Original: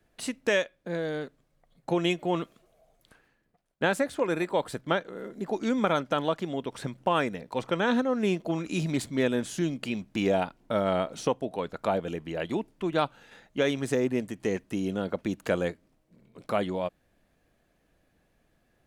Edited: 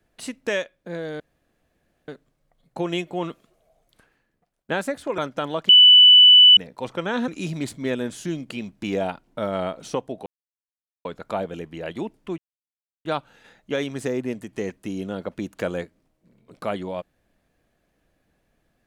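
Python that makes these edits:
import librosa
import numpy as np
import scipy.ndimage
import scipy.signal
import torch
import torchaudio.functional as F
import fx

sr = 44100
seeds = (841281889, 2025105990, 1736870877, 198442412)

y = fx.edit(x, sr, fx.insert_room_tone(at_s=1.2, length_s=0.88),
    fx.cut(start_s=4.3, length_s=1.62),
    fx.bleep(start_s=6.43, length_s=0.88, hz=2980.0, db=-7.0),
    fx.cut(start_s=8.02, length_s=0.59),
    fx.insert_silence(at_s=11.59, length_s=0.79),
    fx.insert_silence(at_s=12.92, length_s=0.67), tone=tone)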